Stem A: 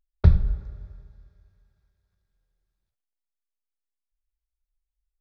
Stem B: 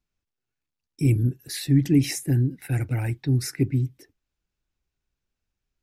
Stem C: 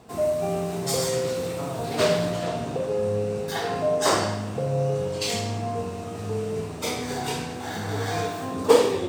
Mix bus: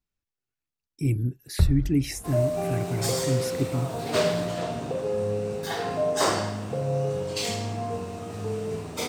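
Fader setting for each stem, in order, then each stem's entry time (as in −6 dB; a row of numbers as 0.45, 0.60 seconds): −5.0, −4.5, −2.0 decibels; 1.35, 0.00, 2.15 seconds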